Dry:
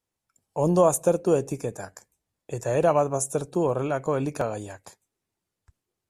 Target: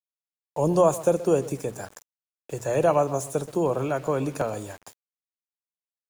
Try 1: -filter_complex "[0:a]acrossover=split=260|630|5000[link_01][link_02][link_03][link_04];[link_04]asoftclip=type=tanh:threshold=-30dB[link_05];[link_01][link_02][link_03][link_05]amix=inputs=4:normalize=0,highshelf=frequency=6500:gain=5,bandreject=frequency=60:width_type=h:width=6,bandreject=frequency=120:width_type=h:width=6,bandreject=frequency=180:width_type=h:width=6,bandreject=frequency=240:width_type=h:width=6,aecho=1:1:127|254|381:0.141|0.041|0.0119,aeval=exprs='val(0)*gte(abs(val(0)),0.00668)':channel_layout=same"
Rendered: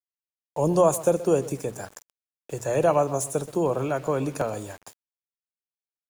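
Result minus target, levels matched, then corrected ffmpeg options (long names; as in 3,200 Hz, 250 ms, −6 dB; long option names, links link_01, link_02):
soft clipping: distortion −6 dB
-filter_complex "[0:a]acrossover=split=260|630|5000[link_01][link_02][link_03][link_04];[link_04]asoftclip=type=tanh:threshold=-40dB[link_05];[link_01][link_02][link_03][link_05]amix=inputs=4:normalize=0,highshelf=frequency=6500:gain=5,bandreject=frequency=60:width_type=h:width=6,bandreject=frequency=120:width_type=h:width=6,bandreject=frequency=180:width_type=h:width=6,bandreject=frequency=240:width_type=h:width=6,aecho=1:1:127|254|381:0.141|0.041|0.0119,aeval=exprs='val(0)*gte(abs(val(0)),0.00668)':channel_layout=same"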